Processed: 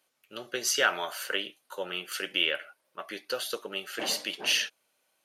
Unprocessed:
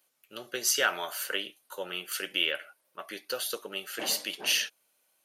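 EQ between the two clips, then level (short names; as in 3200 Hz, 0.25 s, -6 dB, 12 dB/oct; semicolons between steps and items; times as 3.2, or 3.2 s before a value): high shelf 9300 Hz -12 dB; +2.0 dB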